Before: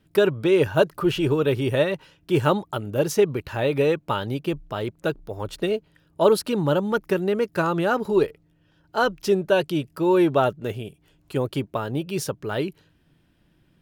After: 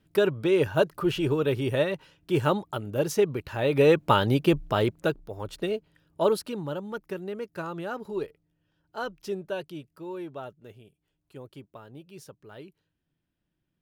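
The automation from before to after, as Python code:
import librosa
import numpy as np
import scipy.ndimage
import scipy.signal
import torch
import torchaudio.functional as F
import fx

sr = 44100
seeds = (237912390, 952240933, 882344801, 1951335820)

y = fx.gain(x, sr, db=fx.line((3.58, -4.0), (4.0, 4.5), (4.82, 4.5), (5.26, -5.0), (6.22, -5.0), (6.7, -12.0), (9.43, -12.0), (10.21, -19.0)))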